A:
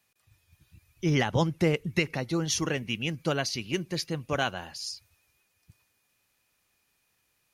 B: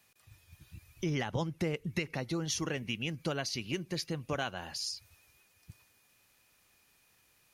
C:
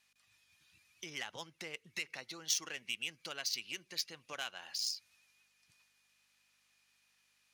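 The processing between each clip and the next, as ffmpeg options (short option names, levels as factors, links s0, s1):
-af "acompressor=threshold=0.00794:ratio=2.5,volume=1.78"
-af "aeval=exprs='val(0)+0.000708*(sin(2*PI*50*n/s)+sin(2*PI*2*50*n/s)/2+sin(2*PI*3*50*n/s)/3+sin(2*PI*4*50*n/s)/4+sin(2*PI*5*50*n/s)/5)':c=same,adynamicsmooth=sensitivity=4:basefreq=3900,aderivative,volume=2.66"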